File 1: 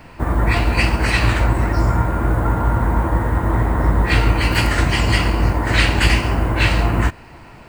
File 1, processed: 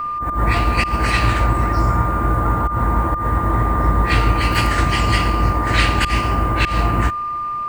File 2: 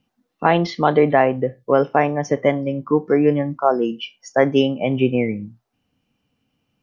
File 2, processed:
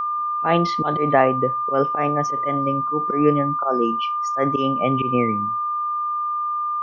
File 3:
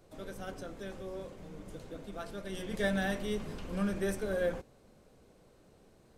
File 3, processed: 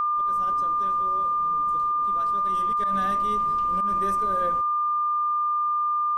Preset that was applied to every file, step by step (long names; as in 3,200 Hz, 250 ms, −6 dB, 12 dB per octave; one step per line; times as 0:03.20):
volume swells 119 ms
steady tone 1,200 Hz −20 dBFS
level −1 dB